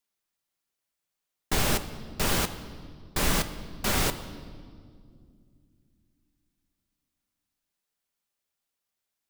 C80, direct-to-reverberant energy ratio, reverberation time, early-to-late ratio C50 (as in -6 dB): 14.0 dB, 9.5 dB, 2.2 s, 13.0 dB